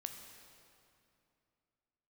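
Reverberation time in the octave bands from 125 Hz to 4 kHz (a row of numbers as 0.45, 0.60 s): 3.0, 3.0, 2.7, 2.6, 2.3, 2.0 s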